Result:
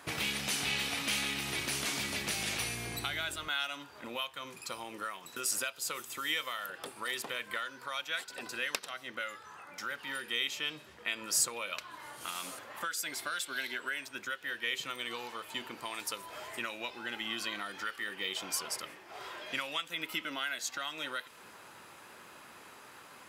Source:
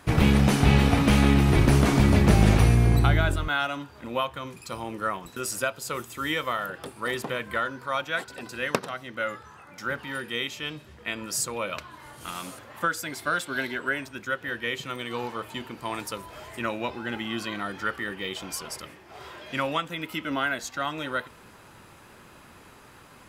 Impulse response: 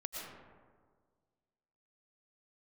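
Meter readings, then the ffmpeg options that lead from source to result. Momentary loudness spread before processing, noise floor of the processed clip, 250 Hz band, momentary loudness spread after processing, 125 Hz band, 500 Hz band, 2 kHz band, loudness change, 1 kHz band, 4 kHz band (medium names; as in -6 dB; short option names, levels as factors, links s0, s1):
17 LU, -54 dBFS, -20.0 dB, 12 LU, -27.0 dB, -14.0 dB, -6.0 dB, -9.5 dB, -10.5 dB, -1.0 dB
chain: -filter_complex "[0:a]highpass=f=530:p=1,acrossover=split=2200[s0][s1];[s0]acompressor=threshold=0.0112:ratio=12[s2];[s2][s1]amix=inputs=2:normalize=0"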